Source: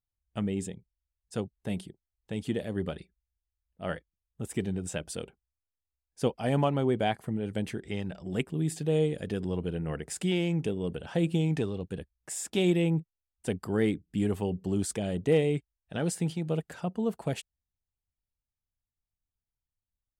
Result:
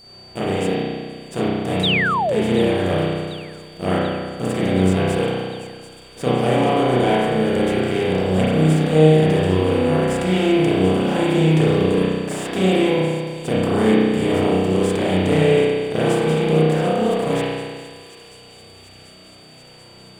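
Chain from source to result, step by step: per-bin compression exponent 0.4; in parallel at -7 dB: sample gate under -31 dBFS; on the sum: whine 4600 Hz -38 dBFS; spring tank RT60 1.7 s, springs 32 ms, chirp 25 ms, DRR -9.5 dB; painted sound fall, 1.83–2.42, 360–4000 Hz -13 dBFS; on a send: thin delay 0.738 s, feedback 77%, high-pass 4100 Hz, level -11.5 dB; on the sum: gain -6.5 dB

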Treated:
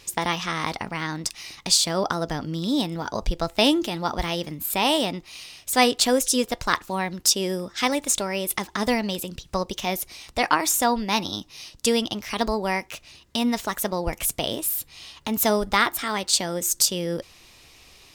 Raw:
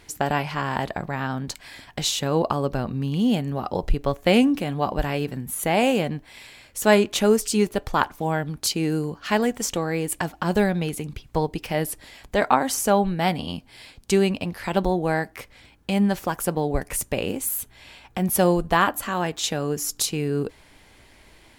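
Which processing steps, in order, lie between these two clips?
bell 4800 Hz +10.5 dB 2.2 oct; wide varispeed 1.19×; gain -3 dB

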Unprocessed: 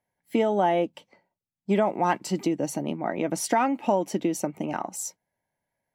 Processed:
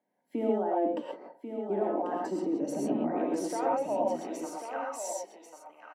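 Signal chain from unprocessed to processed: weighting filter A; spectral gain 0.49–2.51, 260–1900 Hz +10 dB; tilt shelf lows +9.5 dB, about 900 Hz; reverse; compressor 6:1, threshold -29 dBFS, peak gain reduction 19 dB; reverse; limiter -28.5 dBFS, peak gain reduction 10.5 dB; high-pass sweep 230 Hz -> 3600 Hz, 2.98–5.77; echo 1.091 s -8 dB; non-linear reverb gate 0.15 s rising, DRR -2.5 dB

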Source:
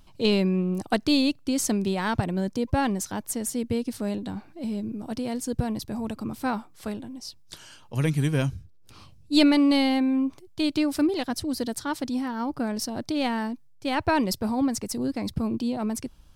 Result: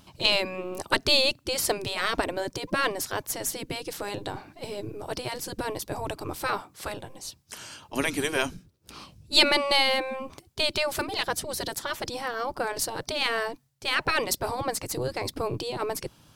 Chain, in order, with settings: spectral gate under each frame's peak -10 dB weak; gain +7 dB

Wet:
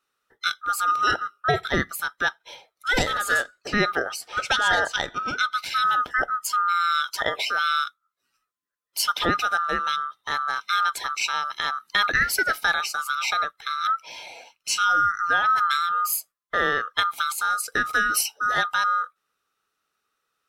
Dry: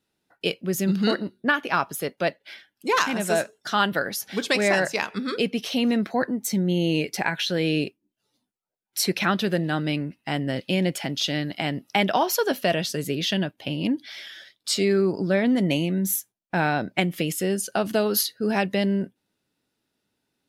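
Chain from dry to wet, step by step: band-swap scrambler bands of 1000 Hz; 3.37–5.51 bell 12000 Hz -9.5 dB 0.67 oct

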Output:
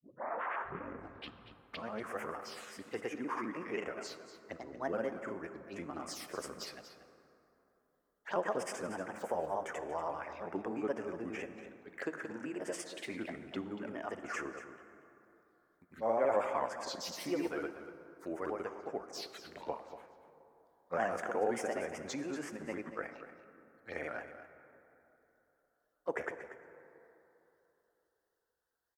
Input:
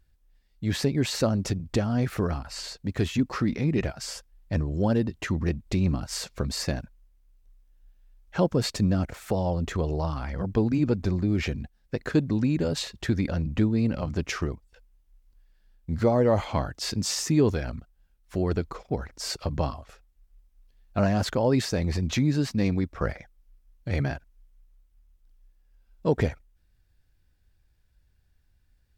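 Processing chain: tape start at the beginning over 2.25 s; three-band isolator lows -18 dB, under 270 Hz, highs -16 dB, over 2200 Hz; grains 0.125 s, grains 19/s, pitch spread up and down by 3 st; envelope phaser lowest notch 400 Hz, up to 4100 Hz, full sweep at -34 dBFS; tilt +4 dB/oct; echo 0.236 s -12.5 dB; plate-style reverb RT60 3.4 s, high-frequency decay 0.45×, DRR 11 dB; gain -1.5 dB

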